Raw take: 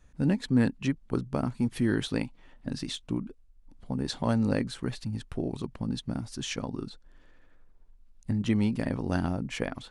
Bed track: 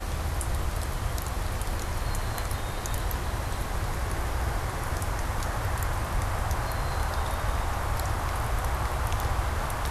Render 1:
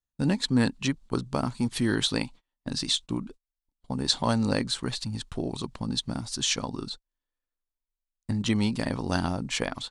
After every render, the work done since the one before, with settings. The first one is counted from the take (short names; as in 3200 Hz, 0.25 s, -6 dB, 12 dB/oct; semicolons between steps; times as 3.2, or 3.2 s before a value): gate -44 dBFS, range -35 dB; ten-band EQ 1000 Hz +6 dB, 4000 Hz +10 dB, 8000 Hz +10 dB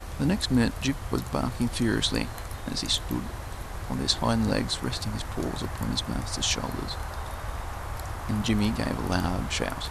add bed track -6 dB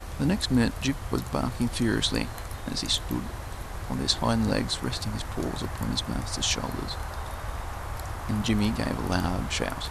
nothing audible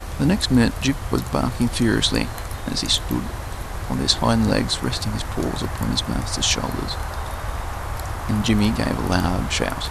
gain +6.5 dB